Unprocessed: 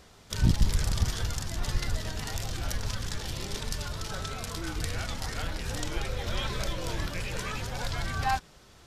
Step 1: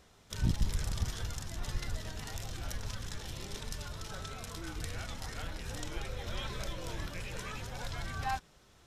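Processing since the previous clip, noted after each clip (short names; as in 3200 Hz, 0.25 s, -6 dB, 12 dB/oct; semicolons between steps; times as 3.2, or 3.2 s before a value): notch 4600 Hz, Q 16; gain -7 dB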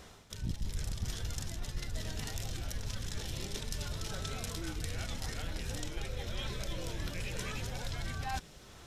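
dynamic EQ 1100 Hz, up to -6 dB, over -58 dBFS, Q 1.1; reverse; compressor 4:1, threshold -44 dBFS, peak gain reduction 17 dB; reverse; gain +9 dB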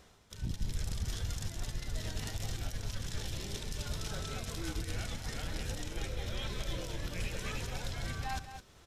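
on a send: tapped delay 69/212 ms -17.5/-8.5 dB; on the sum: limiter -28 dBFS, peak gain reduction 7.5 dB; upward expander 1.5:1, over -53 dBFS; gain +3.5 dB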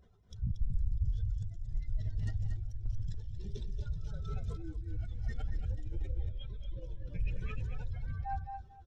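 spectral contrast raised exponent 2.3; echo 0.232 s -8 dB; random-step tremolo; gain +4.5 dB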